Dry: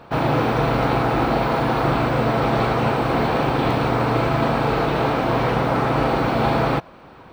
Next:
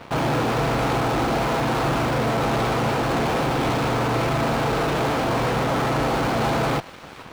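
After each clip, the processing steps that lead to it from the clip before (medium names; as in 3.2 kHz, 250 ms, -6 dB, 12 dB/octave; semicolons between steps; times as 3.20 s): in parallel at -5.5 dB: fuzz box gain 36 dB, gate -43 dBFS; on the sum: feedback echo behind a high-pass 451 ms, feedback 55%, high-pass 1.6 kHz, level -17 dB; trim -8 dB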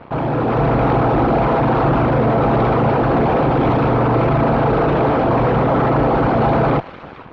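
resonances exaggerated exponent 1.5; level rider gain up to 5 dB; distance through air 210 m; trim +2.5 dB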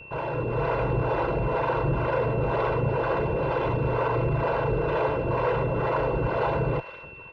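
comb 2 ms, depth 72%; harmonic tremolo 2.1 Hz, depth 70%, crossover 410 Hz; whistle 2.7 kHz -35 dBFS; trim -8 dB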